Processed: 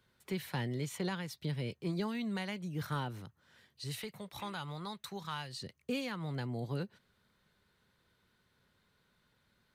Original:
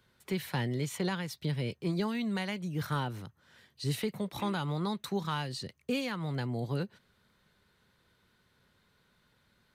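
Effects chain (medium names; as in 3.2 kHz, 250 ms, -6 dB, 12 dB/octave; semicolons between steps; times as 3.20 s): 3.84–5.62 s: peaking EQ 270 Hz -9.5 dB 2.1 oct; trim -4 dB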